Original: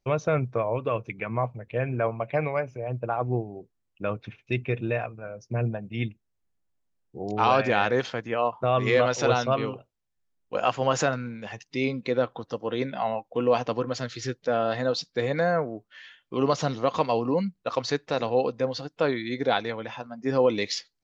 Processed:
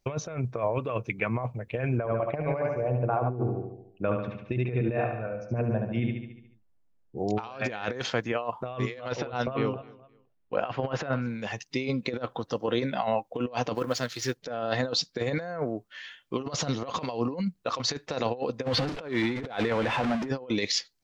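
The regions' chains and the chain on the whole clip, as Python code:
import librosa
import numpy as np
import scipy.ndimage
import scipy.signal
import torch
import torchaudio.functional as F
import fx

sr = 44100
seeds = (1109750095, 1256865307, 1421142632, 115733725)

y = fx.chain(x, sr, fx.lowpass(hz=1200.0, slope=6),
    fx.echo_feedback(ms=72, feedback_pct=55, wet_db=-6), at=(1.98, 7.18))
y = fx.chain(y, sr, fx.air_absorb(metres=310.0),
    fx.echo_feedback(ms=257, feedback_pct=25, wet_db=-23.5), at=(9.12, 11.27))
y = fx.chain(y, sr, fx.law_mismatch(coded='A'),
    fx.low_shelf(hz=220.0, db=-5.0), at=(13.75, 14.37))
y = fx.chain(y, sr, fx.zero_step(step_db=-30.5),
    fx.lowpass(hz=2900.0, slope=12),
    fx.pre_swell(db_per_s=37.0), at=(18.63, 20.29))
y = fx.high_shelf(y, sr, hz=5200.0, db=4.5)
y = fx.over_compress(y, sr, threshold_db=-28.0, ratio=-0.5)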